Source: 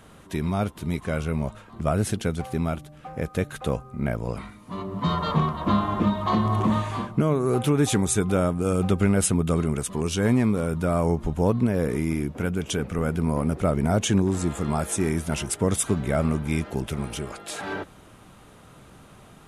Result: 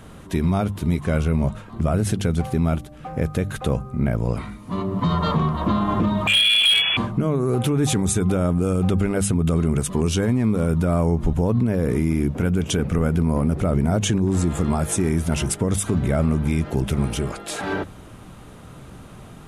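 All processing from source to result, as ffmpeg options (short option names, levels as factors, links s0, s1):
-filter_complex "[0:a]asettb=1/sr,asplit=3[s0][s1][s2];[s0]atrim=end=6.274[s3];[s1]atrim=start=6.27:end=6.97,asetpts=PTS-STARTPTS,afade=t=in:d=0.004:c=qsin,afade=t=out:st=0.696:d=0.004:c=qsin,acontrast=68,lowpass=f=3000:t=q:w=0.5098,lowpass=f=3000:t=q:w=0.6013,lowpass=f=3000:t=q:w=0.9,lowpass=f=3000:t=q:w=2.563,afreqshift=-3500,asoftclip=type=hard:threshold=0.237[s4];[s2]atrim=start=6.966[s5];[s3][s4]acrossfade=d=0.004:c1=hsin:c2=qsin[s6];[s6][s5]acrossfade=d=0.004:c1=qsin:c2=hsin,lowshelf=f=290:g=7.5,bandreject=f=50:t=h:w=6,bandreject=f=100:t=h:w=6,bandreject=f=150:t=h:w=6,bandreject=f=200:t=h:w=6,alimiter=limit=0.158:level=0:latency=1:release=82,volume=1.58"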